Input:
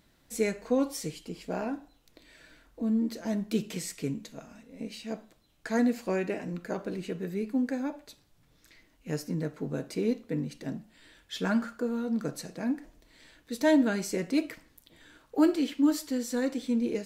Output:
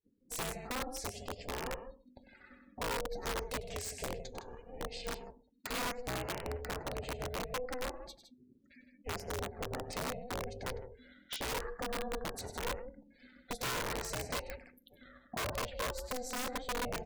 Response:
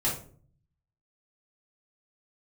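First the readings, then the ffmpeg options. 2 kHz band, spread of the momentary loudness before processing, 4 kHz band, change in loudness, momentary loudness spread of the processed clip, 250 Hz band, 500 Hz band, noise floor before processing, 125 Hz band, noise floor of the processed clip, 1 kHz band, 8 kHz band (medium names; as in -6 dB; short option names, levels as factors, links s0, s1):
-1.5 dB, 15 LU, +1.0 dB, -9.0 dB, 15 LU, -19.0 dB, -8.0 dB, -66 dBFS, -6.5 dB, -67 dBFS, +1.0 dB, -0.5 dB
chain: -filter_complex "[0:a]asplit=2[s0][s1];[1:a]atrim=start_sample=2205,asetrate=52920,aresample=44100[s2];[s1][s2]afir=irnorm=-1:irlink=0,volume=0.0299[s3];[s0][s3]amix=inputs=2:normalize=0,adynamicequalizer=threshold=0.00631:dfrequency=340:dqfactor=3.3:tfrequency=340:tqfactor=3.3:attack=5:release=100:ratio=0.375:range=1.5:mode=cutabove:tftype=bell,acompressor=threshold=0.0126:ratio=3,afftdn=nr=36:nf=-52,aecho=1:1:99.13|160.3:0.282|0.316,aeval=exprs='val(0)*sin(2*PI*250*n/s)':c=same,aeval=exprs='(mod(47.3*val(0)+1,2)-1)/47.3':c=same,volume=1.5"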